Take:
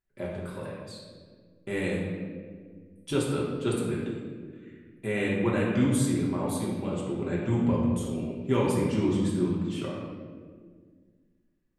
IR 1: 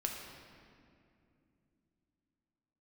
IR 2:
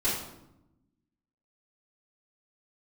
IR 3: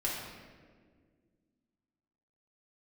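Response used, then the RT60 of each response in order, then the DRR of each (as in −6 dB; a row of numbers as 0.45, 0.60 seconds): 3; 2.6, 0.85, 1.8 seconds; 0.5, −11.5, −6.0 decibels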